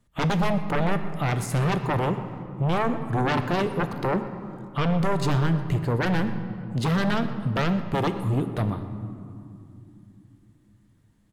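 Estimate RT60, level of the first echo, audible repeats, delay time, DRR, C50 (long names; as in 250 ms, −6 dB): 2.8 s, −18.5 dB, 1, 122 ms, 8.0 dB, 9.5 dB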